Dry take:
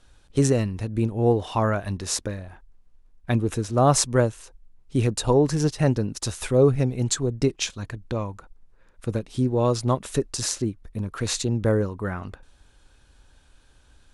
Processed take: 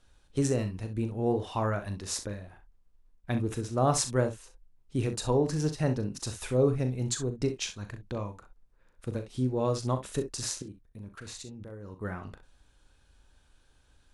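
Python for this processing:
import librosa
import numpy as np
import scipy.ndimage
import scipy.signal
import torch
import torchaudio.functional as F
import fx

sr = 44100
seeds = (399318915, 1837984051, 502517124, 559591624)

p1 = fx.level_steps(x, sr, step_db=18, at=(10.62, 12.02))
p2 = p1 + fx.room_early_taps(p1, sr, ms=(39, 64), db=(-10.0, -12.5), dry=0)
y = F.gain(torch.from_numpy(p2), -7.5).numpy()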